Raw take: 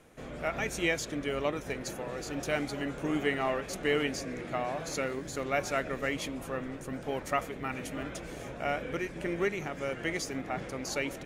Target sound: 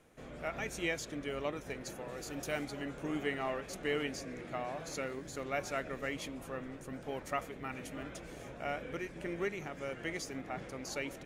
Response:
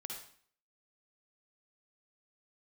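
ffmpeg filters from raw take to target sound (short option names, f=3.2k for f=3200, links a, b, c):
-filter_complex "[0:a]asettb=1/sr,asplit=3[a][b][c];[a]atrim=end=2.084[d];[b]atrim=start=2.08:end=2.65,asetpts=PTS-STARTPTS,afade=t=in:d=0.004:c=qsin,afade=t=out:st=0.566:d=0.004:c=qsin,highshelf=f=9.4k:g=10[e];[c]atrim=start=2.646[f];[d][e]acrossfade=d=0.004:c1=hsin:c2=qsin[g];[g][f]acrossfade=d=0.004:c1=qsin:c2=hsin,volume=-6dB"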